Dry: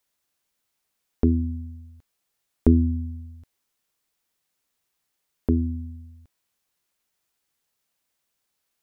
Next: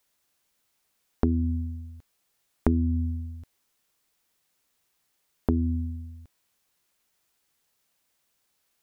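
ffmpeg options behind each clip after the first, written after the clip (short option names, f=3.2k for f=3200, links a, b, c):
-af "acompressor=threshold=-25dB:ratio=4,volume=4dB"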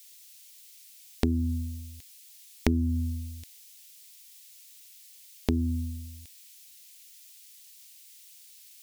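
-af "aexciter=amount=8:drive=7.1:freq=2k,volume=-2dB"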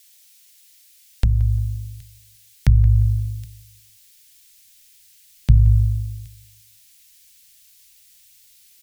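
-filter_complex "[0:a]afreqshift=-190,asplit=2[a][b];[b]adelay=175,lowpass=f=2k:p=1,volume=-16dB,asplit=2[c][d];[d]adelay=175,lowpass=f=2k:p=1,volume=0.33,asplit=2[e][f];[f]adelay=175,lowpass=f=2k:p=1,volume=0.33[g];[a][c][e][g]amix=inputs=4:normalize=0,asubboost=boost=9:cutoff=120"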